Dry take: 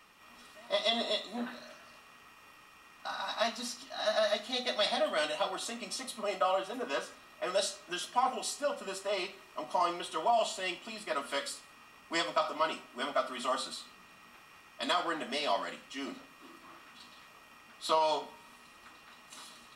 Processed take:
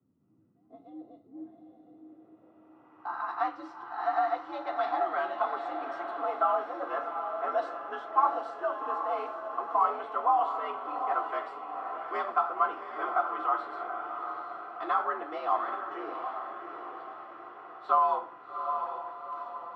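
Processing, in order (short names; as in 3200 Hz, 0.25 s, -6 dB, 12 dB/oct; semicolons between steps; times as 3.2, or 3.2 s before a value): frequency shift +77 Hz; low-pass sweep 210 Hz -> 1200 Hz, 1.61–3.21; diffused feedback echo 0.777 s, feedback 51%, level -6.5 dB; gain -1.5 dB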